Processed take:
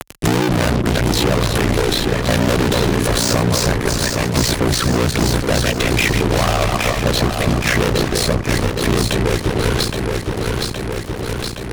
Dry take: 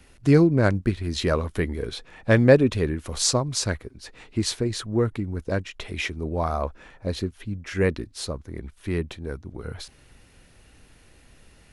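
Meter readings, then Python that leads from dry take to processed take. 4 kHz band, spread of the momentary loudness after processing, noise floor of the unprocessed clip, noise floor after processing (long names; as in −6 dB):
+12.5 dB, 6 LU, −55 dBFS, −26 dBFS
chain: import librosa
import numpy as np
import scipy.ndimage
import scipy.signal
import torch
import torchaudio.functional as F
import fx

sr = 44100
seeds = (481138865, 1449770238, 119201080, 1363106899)

y = fx.reverse_delay_fb(x, sr, ms=165, feedback_pct=51, wet_db=-13.5)
y = fx.fuzz(y, sr, gain_db=40.0, gate_db=-45.0)
y = y * np.sin(2.0 * np.pi * 30.0 * np.arange(len(y)) / sr)
y = fx.echo_feedback(y, sr, ms=818, feedback_pct=47, wet_db=-7.5)
y = fx.band_squash(y, sr, depth_pct=70)
y = y * 10.0 ** (1.0 / 20.0)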